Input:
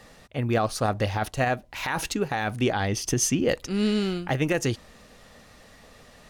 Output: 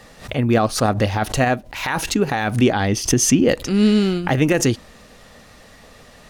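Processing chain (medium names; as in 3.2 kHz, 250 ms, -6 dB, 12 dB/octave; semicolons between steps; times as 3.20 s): dynamic bell 250 Hz, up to +5 dB, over -35 dBFS, Q 1.4; swell ahead of each attack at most 130 dB/s; trim +5.5 dB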